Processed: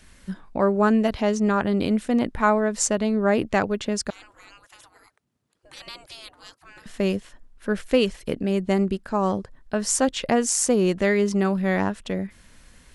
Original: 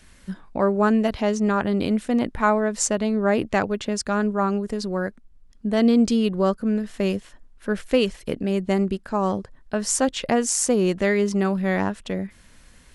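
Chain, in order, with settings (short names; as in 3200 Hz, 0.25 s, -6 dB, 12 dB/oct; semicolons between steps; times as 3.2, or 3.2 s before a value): 4.1–6.86 spectral gate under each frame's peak -30 dB weak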